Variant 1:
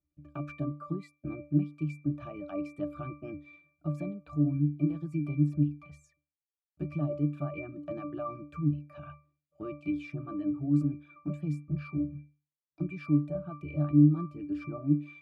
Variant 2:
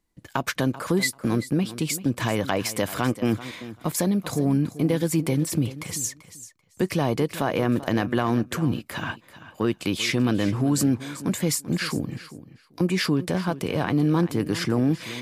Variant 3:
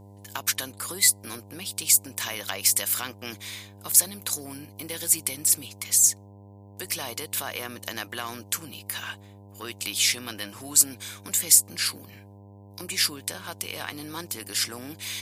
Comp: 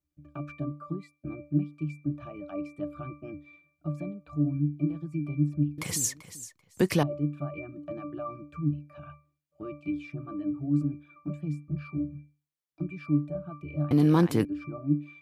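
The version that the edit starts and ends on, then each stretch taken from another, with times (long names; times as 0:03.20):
1
0:05.78–0:07.03: punch in from 2
0:13.91–0:14.45: punch in from 2
not used: 3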